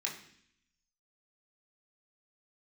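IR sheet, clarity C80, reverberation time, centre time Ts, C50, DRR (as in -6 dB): 11.5 dB, 0.65 s, 26 ms, 8.0 dB, -2.5 dB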